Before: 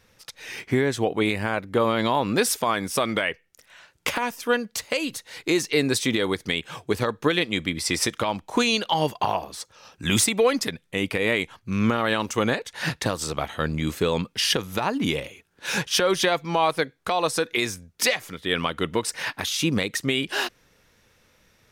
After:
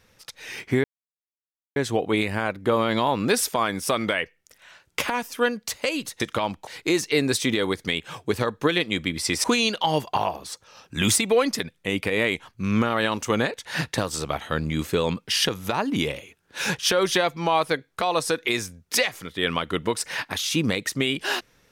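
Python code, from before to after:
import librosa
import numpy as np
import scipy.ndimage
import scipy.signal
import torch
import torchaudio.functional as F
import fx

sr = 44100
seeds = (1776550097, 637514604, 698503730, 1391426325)

y = fx.edit(x, sr, fx.insert_silence(at_s=0.84, length_s=0.92),
    fx.move(start_s=8.05, length_s=0.47, to_s=5.28), tone=tone)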